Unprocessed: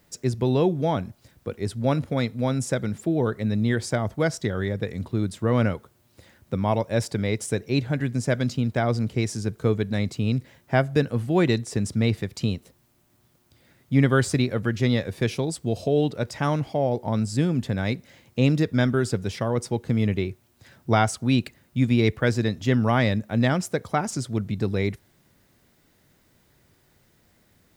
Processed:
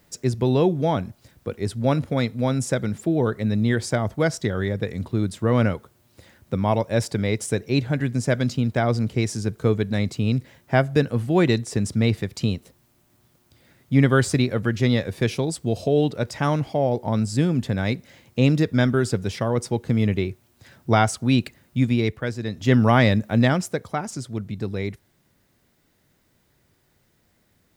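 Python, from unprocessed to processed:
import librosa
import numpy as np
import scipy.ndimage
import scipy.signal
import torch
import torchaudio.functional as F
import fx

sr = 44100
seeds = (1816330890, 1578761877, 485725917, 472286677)

y = fx.gain(x, sr, db=fx.line((21.77, 2.0), (22.38, -7.0), (22.73, 4.5), (23.32, 4.5), (23.99, -3.0)))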